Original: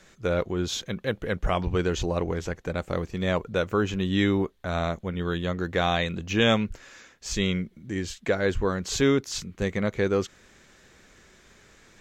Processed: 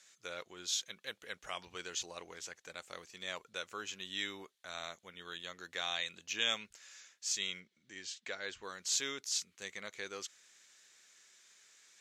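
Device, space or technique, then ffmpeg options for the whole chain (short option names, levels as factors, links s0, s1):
piezo pickup straight into a mixer: -filter_complex "[0:a]lowpass=8700,aderivative,asettb=1/sr,asplit=3[s0][s1][s2];[s0]atrim=end=7.604[s3];[s1]atrim=start=7.6:end=8.63,asetpts=PTS-STARTPTS,afade=t=in:d=0.004:c=qsin,afade=t=out:st=1.026:d=0.004:c=qsin,lowpass=5700[s4];[s2]atrim=start=8.626[s5];[s3][s4]acrossfade=d=0.004:c1=hsin:c2=qsin[s6];[s6][s5]acrossfade=d=0.004:c1=qsin:c2=hsin,volume=1.12"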